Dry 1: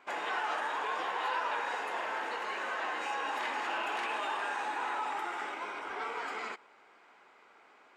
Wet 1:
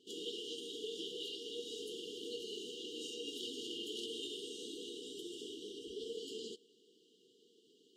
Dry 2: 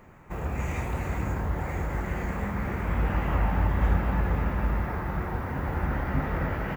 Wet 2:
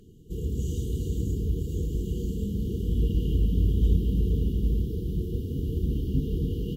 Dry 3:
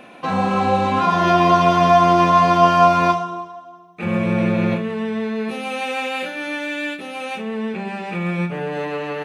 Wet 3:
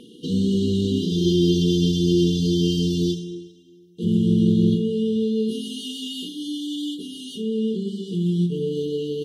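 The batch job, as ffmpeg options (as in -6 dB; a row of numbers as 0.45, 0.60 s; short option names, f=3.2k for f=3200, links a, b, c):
-af "afftfilt=real='re*(1-between(b*sr/4096,490,2800))':imag='im*(1-between(b*sr/4096,490,2800))':win_size=4096:overlap=0.75,volume=2dB" -ar 48000 -c:a libvorbis -b:a 48k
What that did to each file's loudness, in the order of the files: -9.0, +1.0, -4.0 LU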